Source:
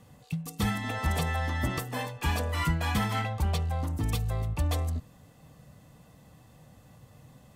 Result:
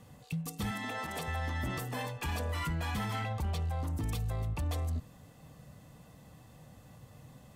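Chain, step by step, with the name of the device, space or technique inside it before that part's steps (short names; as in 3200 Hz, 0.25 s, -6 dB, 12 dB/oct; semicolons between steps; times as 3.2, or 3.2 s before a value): soft clipper into limiter (soft clip -20 dBFS, distortion -22 dB; limiter -28 dBFS, peak gain reduction 7 dB); 0.71–1.28 HPF 200 Hz 12 dB/oct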